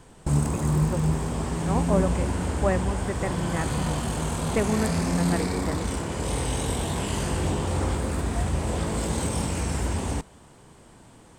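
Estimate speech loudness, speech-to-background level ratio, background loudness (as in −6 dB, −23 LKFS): −31.0 LKFS, −4.0 dB, −27.0 LKFS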